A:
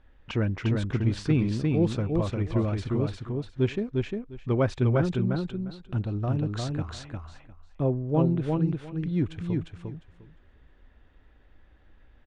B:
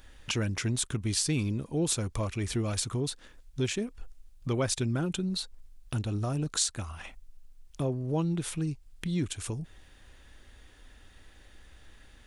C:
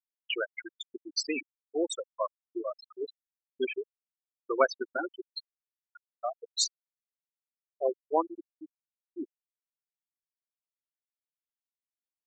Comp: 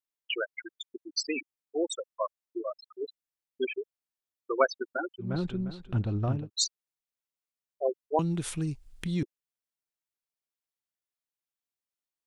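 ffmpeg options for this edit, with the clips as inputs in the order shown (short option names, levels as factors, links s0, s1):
-filter_complex "[2:a]asplit=3[s0][s1][s2];[s0]atrim=end=5.42[s3];[0:a]atrim=start=5.18:end=6.5[s4];[s1]atrim=start=6.26:end=8.192[s5];[1:a]atrim=start=8.188:end=9.232[s6];[s2]atrim=start=9.228[s7];[s3][s4]acrossfade=d=0.24:c1=tri:c2=tri[s8];[s8][s5]acrossfade=d=0.24:c1=tri:c2=tri[s9];[s9][s6]acrossfade=d=0.004:c1=hsin:c2=hsin[s10];[s10][s7]acrossfade=d=0.004:c1=hsin:c2=hsin"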